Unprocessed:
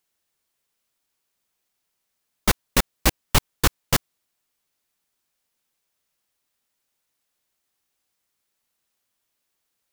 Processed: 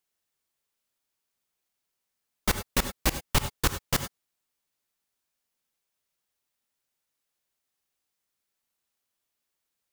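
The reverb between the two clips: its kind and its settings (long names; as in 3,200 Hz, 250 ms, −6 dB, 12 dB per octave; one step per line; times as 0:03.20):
reverb whose tail is shaped and stops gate 120 ms rising, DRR 9.5 dB
level −6 dB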